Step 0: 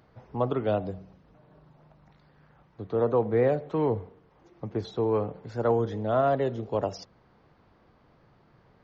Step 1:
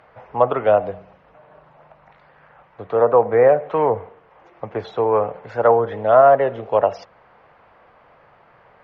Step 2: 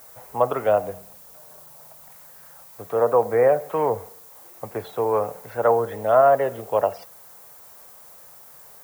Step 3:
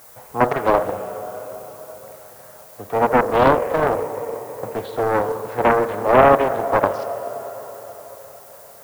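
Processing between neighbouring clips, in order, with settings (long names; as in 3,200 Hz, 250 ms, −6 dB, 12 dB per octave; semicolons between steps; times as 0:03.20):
treble cut that deepens with the level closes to 1,900 Hz, closed at −20.5 dBFS; flat-topped bell 1,200 Hz +14.5 dB 3 octaves; level −1 dB
background noise violet −43 dBFS; level −4 dB
dense smooth reverb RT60 4.7 s, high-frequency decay 0.95×, DRR 7 dB; highs frequency-modulated by the lows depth 0.81 ms; level +3 dB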